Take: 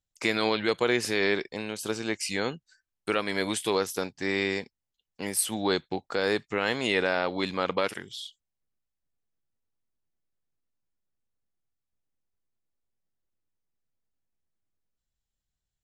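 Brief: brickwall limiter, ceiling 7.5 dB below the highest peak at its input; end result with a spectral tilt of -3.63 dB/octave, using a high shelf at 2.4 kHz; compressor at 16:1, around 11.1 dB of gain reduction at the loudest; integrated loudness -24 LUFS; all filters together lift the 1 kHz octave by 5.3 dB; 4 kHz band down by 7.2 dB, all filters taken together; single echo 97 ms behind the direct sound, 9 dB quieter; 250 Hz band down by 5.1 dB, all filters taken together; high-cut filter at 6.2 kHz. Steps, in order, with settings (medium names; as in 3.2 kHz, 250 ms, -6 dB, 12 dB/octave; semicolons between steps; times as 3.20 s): low-pass 6.2 kHz; peaking EQ 250 Hz -8 dB; peaking EQ 1 kHz +8.5 dB; treble shelf 2.4 kHz -4.5 dB; peaking EQ 4 kHz -5 dB; compression 16:1, threshold -30 dBFS; peak limiter -23 dBFS; delay 97 ms -9 dB; trim +14 dB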